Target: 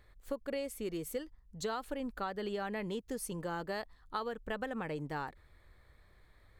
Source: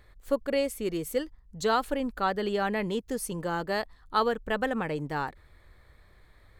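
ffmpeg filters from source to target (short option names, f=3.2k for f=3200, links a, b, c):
-af "acompressor=threshold=-28dB:ratio=6,volume=-5.5dB"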